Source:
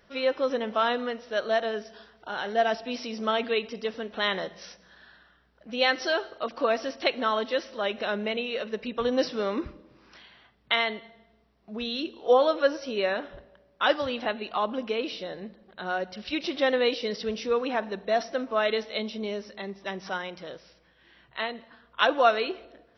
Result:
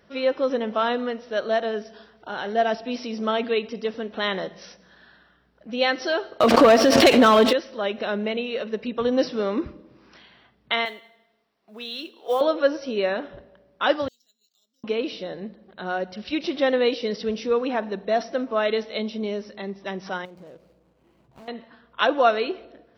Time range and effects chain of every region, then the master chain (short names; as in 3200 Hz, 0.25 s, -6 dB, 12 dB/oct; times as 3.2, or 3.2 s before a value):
6.4–7.53 sample leveller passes 3 + backwards sustainer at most 35 dB/s
10.85–12.41 HPF 1100 Hz 6 dB/oct + modulation noise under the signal 25 dB
14.08–14.84 inverse Chebyshev high-pass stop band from 2500 Hz, stop band 50 dB + careless resampling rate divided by 4×, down none, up hold
20.25–21.48 median filter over 25 samples + compressor, threshold -45 dBFS
whole clip: HPF 130 Hz 6 dB/oct; low shelf 480 Hz +8 dB